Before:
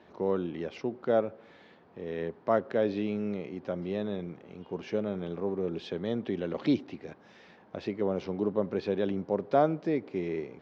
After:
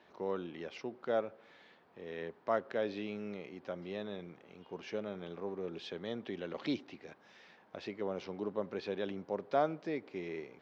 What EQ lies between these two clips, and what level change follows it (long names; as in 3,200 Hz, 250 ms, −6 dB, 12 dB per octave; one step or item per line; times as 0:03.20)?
tilt shelving filter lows −4.5 dB, about 680 Hz
low-shelf EQ 130 Hz −3 dB
−6.0 dB